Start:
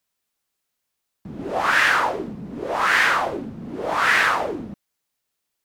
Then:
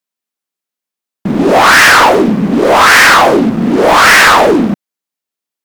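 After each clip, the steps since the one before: resonant low shelf 140 Hz -10.5 dB, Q 1.5; sample leveller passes 5; gain +3.5 dB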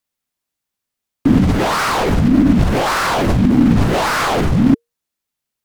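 frequency shift -470 Hz; negative-ratio compressor -12 dBFS, ratio -1; gain -2 dB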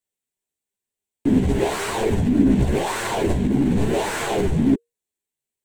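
thirty-one-band EQ 400 Hz +10 dB, 1250 Hz -12 dB, 5000 Hz -7 dB, 8000 Hz +8 dB; chorus voices 2, 0.98 Hz, delay 12 ms, depth 3.3 ms; gain -4 dB

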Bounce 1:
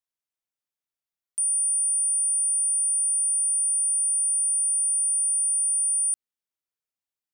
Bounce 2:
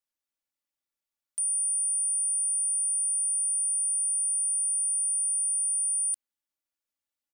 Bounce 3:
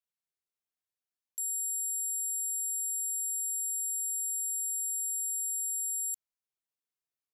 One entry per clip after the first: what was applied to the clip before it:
comb 3.5 ms, depth 99%; gain -3 dB
ring modulator 1900 Hz; gain -3 dB

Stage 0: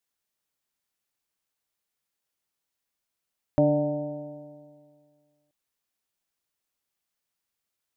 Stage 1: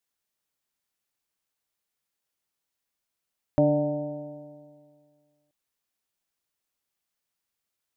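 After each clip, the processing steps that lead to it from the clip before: nothing audible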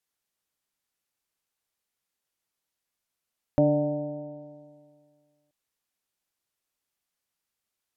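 treble ducked by the level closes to 1000 Hz, closed at -29.5 dBFS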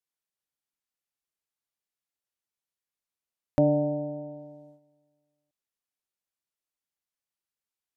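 gate -52 dBFS, range -9 dB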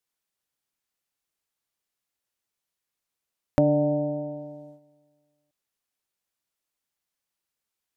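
compressor 2:1, threshold -26 dBFS, peak gain reduction 5.5 dB; gain +6 dB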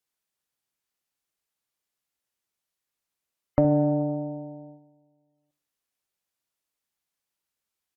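feedback echo 68 ms, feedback 40%, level -13.5 dB; spectral gate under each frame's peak -30 dB strong; added harmonics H 7 -39 dB, 8 -41 dB, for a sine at -5.5 dBFS

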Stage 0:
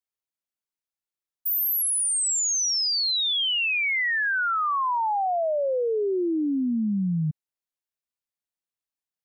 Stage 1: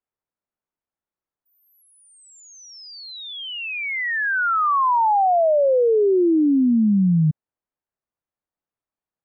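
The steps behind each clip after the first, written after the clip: LPF 1300 Hz 12 dB/oct; gain +8 dB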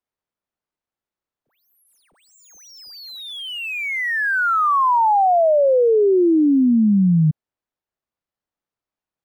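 median filter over 5 samples; gain +2 dB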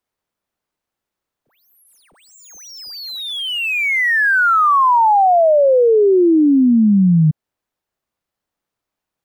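compressor 2:1, threshold -21 dBFS, peak gain reduction 4.5 dB; gain +7.5 dB

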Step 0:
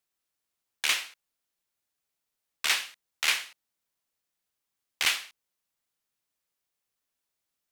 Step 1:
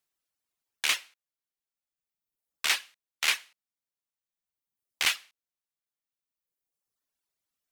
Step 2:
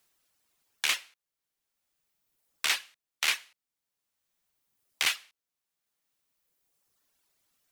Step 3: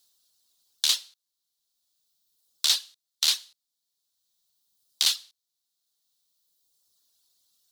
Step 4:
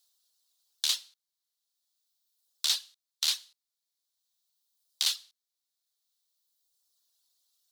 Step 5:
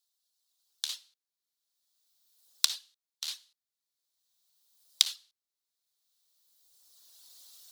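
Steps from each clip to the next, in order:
reverb removal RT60 1.6 s
three-band squash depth 40%
resonant high shelf 3000 Hz +9.5 dB, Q 3; gain -5 dB
HPF 450 Hz 12 dB/oct; gain -5 dB
recorder AGC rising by 13 dB/s; gain -10 dB

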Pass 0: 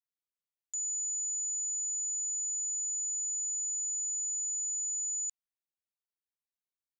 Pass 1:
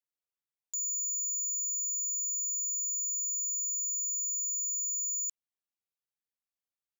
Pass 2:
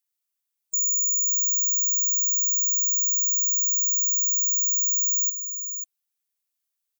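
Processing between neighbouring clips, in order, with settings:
sample leveller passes 2
spectral gate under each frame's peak -25 dB strong; tilt +3.5 dB/oct; echo 0.542 s -8.5 dB

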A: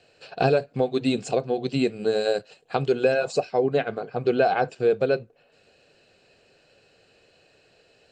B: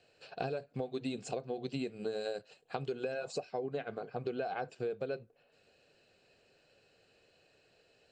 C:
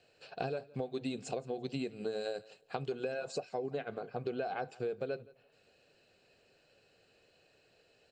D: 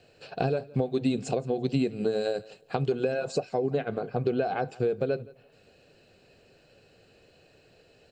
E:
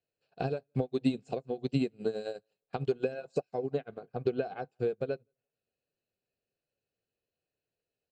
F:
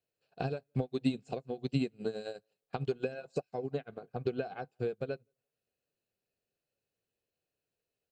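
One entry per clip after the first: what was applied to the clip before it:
compressor 6:1, threshold -25 dBFS, peak gain reduction 9.5 dB; gain -8.5 dB
feedback echo 0.17 s, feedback 18%, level -22 dB
low shelf 390 Hz +8.5 dB; gain +6 dB
upward expander 2.5:1, over -43 dBFS
dynamic EQ 460 Hz, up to -4 dB, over -40 dBFS, Q 0.74

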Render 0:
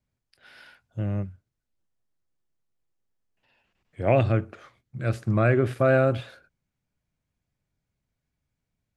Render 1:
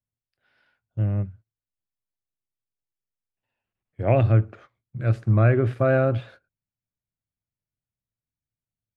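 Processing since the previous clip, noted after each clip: LPF 2400 Hz 6 dB/oct; bell 110 Hz +8.5 dB 0.23 oct; gate -45 dBFS, range -14 dB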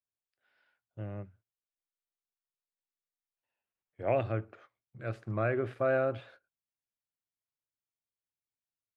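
tone controls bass -12 dB, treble -3 dB; gain -6.5 dB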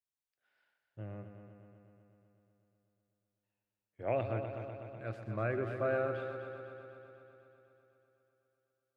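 multi-head echo 0.124 s, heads first and second, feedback 68%, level -11.5 dB; gain -4.5 dB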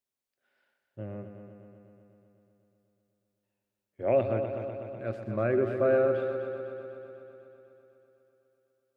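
small resonant body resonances 240/380/540 Hz, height 9 dB, ringing for 45 ms; gain +2.5 dB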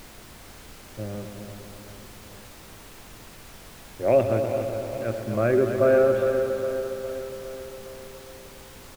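added noise pink -51 dBFS; feedback echo 0.41 s, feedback 56%, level -11.5 dB; gain +5.5 dB

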